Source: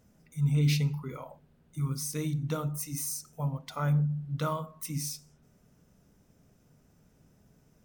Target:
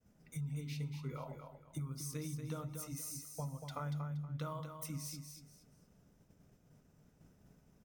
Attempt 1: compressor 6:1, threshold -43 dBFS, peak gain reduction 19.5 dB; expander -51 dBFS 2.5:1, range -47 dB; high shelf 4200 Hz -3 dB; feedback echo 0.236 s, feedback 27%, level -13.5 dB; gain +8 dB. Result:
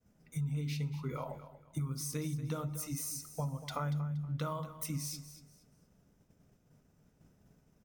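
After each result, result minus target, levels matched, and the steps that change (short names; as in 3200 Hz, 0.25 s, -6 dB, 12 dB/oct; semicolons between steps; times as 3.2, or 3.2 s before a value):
compressor: peak gain reduction -5.5 dB; echo-to-direct -6.5 dB
change: compressor 6:1, threshold -49.5 dBFS, peak gain reduction 25 dB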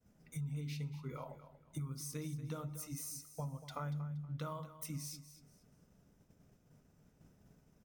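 echo-to-direct -6.5 dB
change: feedback echo 0.236 s, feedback 27%, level -7 dB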